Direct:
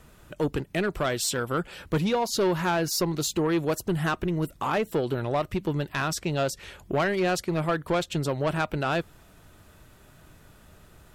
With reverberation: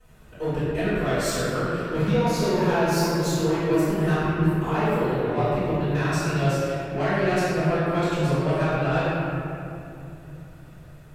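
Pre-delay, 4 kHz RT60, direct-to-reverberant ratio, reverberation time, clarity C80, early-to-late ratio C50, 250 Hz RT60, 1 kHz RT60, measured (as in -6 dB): 4 ms, 1.6 s, -18.0 dB, 3.0 s, -3.0 dB, -5.5 dB, 3.9 s, 2.6 s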